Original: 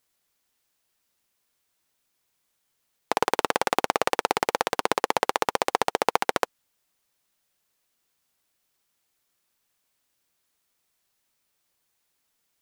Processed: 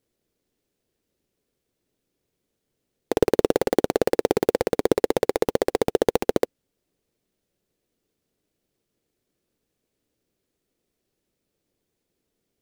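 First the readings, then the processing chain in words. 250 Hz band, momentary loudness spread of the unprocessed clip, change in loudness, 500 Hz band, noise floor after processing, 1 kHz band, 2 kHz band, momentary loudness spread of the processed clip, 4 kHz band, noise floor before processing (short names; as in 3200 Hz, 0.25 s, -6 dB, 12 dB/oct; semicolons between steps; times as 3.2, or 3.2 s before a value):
+10.0 dB, 3 LU, +2.5 dB, +7.5 dB, -80 dBFS, -7.0 dB, -6.5 dB, 3 LU, -5.0 dB, -76 dBFS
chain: half-waves squared off; resonant low shelf 640 Hz +13 dB, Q 1.5; gain -10 dB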